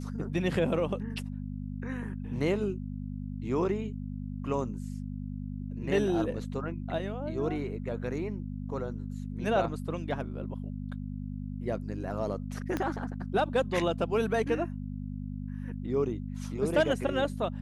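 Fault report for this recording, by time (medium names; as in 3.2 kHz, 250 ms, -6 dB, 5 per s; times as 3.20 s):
hum 50 Hz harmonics 5 -37 dBFS
12.77 s: pop -17 dBFS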